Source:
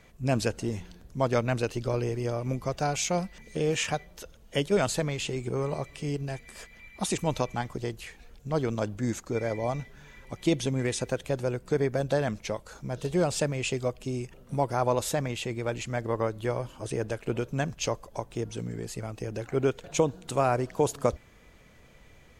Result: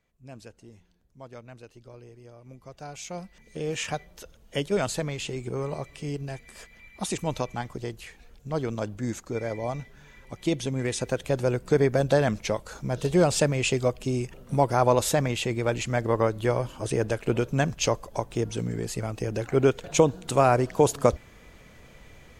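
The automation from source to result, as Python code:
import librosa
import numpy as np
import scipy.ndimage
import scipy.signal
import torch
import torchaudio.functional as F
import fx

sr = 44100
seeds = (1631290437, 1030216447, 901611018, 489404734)

y = fx.gain(x, sr, db=fx.line((2.36, -18.5), (3.08, -9.5), (3.95, -1.0), (10.67, -1.0), (11.53, 5.0)))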